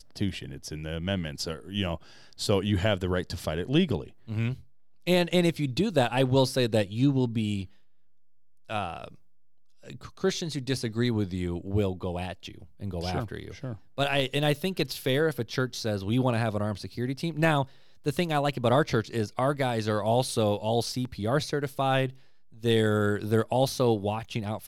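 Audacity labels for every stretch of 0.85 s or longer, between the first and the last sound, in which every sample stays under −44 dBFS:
7.660000	8.700000	silence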